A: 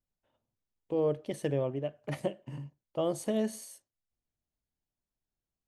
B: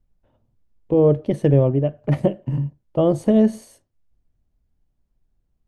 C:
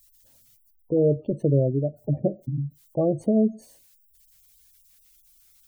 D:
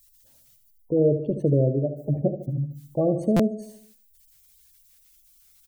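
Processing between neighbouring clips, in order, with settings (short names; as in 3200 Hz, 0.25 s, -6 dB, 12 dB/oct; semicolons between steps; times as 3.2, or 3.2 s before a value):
tilt -3.5 dB/oct; gain +9 dB
added noise blue -53 dBFS; spectral gate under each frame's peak -20 dB strong; gain -5 dB
feedback echo 75 ms, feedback 51%, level -10 dB; stuck buffer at 3.36, samples 256, times 5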